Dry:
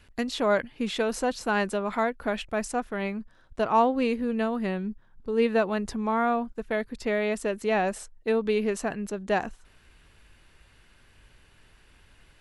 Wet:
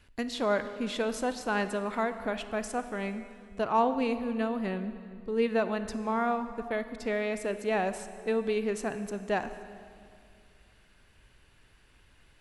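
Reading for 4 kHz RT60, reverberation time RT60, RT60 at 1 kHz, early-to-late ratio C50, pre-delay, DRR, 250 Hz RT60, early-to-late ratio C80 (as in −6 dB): 1.9 s, 2.2 s, 2.1 s, 11.0 dB, 31 ms, 10.5 dB, 2.7 s, 12.0 dB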